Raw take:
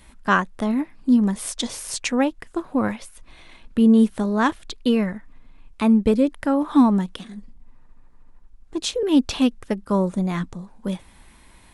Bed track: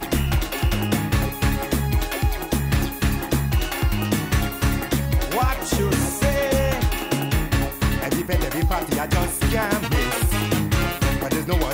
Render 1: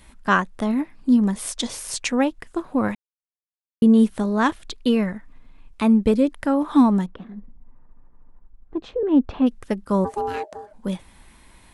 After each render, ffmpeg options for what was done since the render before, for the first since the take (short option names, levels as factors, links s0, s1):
-filter_complex "[0:a]asplit=3[s0][s1][s2];[s0]afade=t=out:st=7.05:d=0.02[s3];[s1]lowpass=1300,afade=t=in:st=7.05:d=0.02,afade=t=out:st=9.46:d=0.02[s4];[s2]afade=t=in:st=9.46:d=0.02[s5];[s3][s4][s5]amix=inputs=3:normalize=0,asplit=3[s6][s7][s8];[s6]afade=t=out:st=10.04:d=0.02[s9];[s7]aeval=exprs='val(0)*sin(2*PI*620*n/s)':c=same,afade=t=in:st=10.04:d=0.02,afade=t=out:st=10.72:d=0.02[s10];[s8]afade=t=in:st=10.72:d=0.02[s11];[s9][s10][s11]amix=inputs=3:normalize=0,asplit=3[s12][s13][s14];[s12]atrim=end=2.95,asetpts=PTS-STARTPTS,afade=t=out:st=2.946:d=0.004:c=hsin[s15];[s13]atrim=start=2.95:end=3.82,asetpts=PTS-STARTPTS,volume=0[s16];[s14]atrim=start=3.82,asetpts=PTS-STARTPTS,afade=t=in:d=0.004:c=hsin[s17];[s15][s16][s17]concat=n=3:v=0:a=1"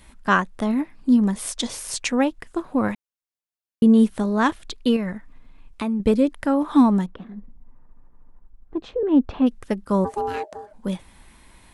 -filter_complex "[0:a]asettb=1/sr,asplit=3[s0][s1][s2];[s0]atrim=end=4.964[s3];[s1]atrim=start=4.96:end=6,asetpts=PTS-STARTPTS,afade=t=in:d=0.004:c=qsin,afade=t=out:st=1.036:d=0.004:c=qsin,acompressor=threshold=0.0891:ratio=6:attack=3.2:release=140:knee=1:detection=peak[s4];[s2]atrim=start=5.996[s5];[s3][s4]acrossfade=d=0.004:c1=hsin:c2=qsin[s6];[s6][s5]acrossfade=d=0.004:c1=qsin:c2=hsin"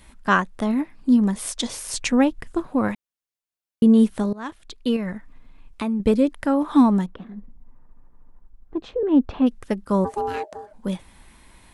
-filter_complex "[0:a]asettb=1/sr,asplit=3[s0][s1][s2];[s0]atrim=end=1.944[s3];[s1]atrim=start=1.94:end=2.67,asetpts=PTS-STARTPTS,afade=t=in:d=0.004:c=qsin,afade=t=out:st=0.726:d=0.004:c=qsin,bass=f=250:g=8,treble=f=4000:g=0[s4];[s2]atrim=start=2.666[s5];[s3][s4]acrossfade=d=0.004:c1=hsin:c2=qsin[s6];[s6][s5]acrossfade=d=0.004:c1=qsin:c2=hsin,asplit=2[s7][s8];[s7]atrim=end=4.33,asetpts=PTS-STARTPTS,afade=t=out:st=4.326:d=0.004:c=hsin:silence=0.0891251[s9];[s8]atrim=start=4.33,asetpts=PTS-STARTPTS,afade=t=in:d=0.81:silence=0.0891251[s10];[s9][s10]concat=n=2:v=0:a=1"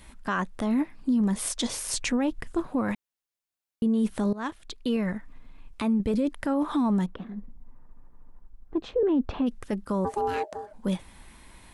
-af "alimiter=limit=0.126:level=0:latency=1:release=12"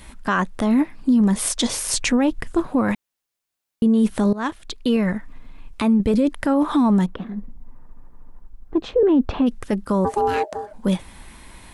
-af "volume=2.37"